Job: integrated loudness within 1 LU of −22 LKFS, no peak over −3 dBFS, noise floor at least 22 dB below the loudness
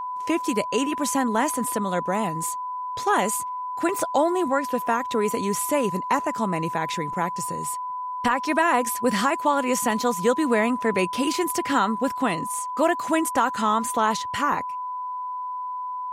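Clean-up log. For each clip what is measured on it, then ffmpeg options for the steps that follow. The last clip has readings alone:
interfering tone 1,000 Hz; level of the tone −28 dBFS; integrated loudness −24.0 LKFS; sample peak −9.0 dBFS; target loudness −22.0 LKFS
→ -af "bandreject=frequency=1000:width=30"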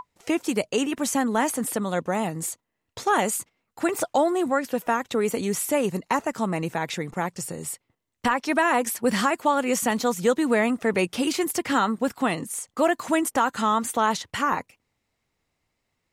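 interfering tone none found; integrated loudness −25.0 LKFS; sample peak −9.0 dBFS; target loudness −22.0 LKFS
→ -af "volume=3dB"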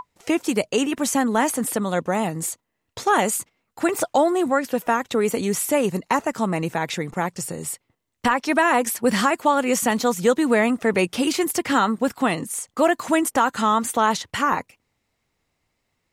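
integrated loudness −22.0 LKFS; sample peak −6.0 dBFS; background noise floor −76 dBFS

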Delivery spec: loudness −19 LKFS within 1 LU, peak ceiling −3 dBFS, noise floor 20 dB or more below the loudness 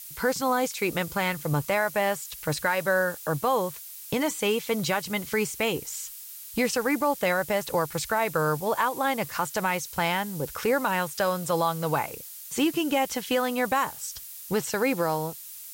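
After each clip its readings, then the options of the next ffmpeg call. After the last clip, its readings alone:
background noise floor −42 dBFS; target noise floor −47 dBFS; integrated loudness −27.0 LKFS; sample peak −12.0 dBFS; target loudness −19.0 LKFS
→ -af "afftdn=noise_reduction=6:noise_floor=-42"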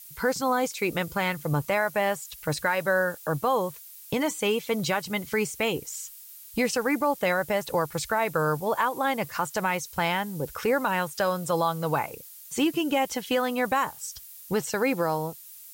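background noise floor −46 dBFS; target noise floor −47 dBFS
→ -af "afftdn=noise_reduction=6:noise_floor=-46"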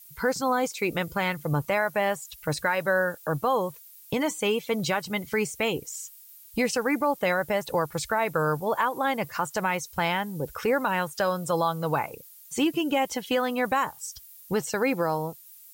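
background noise floor −50 dBFS; integrated loudness −27.0 LKFS; sample peak −12.0 dBFS; target loudness −19.0 LKFS
→ -af "volume=8dB"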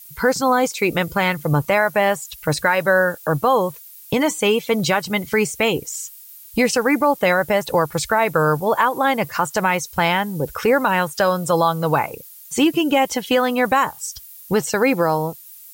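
integrated loudness −19.0 LKFS; sample peak −4.0 dBFS; background noise floor −42 dBFS

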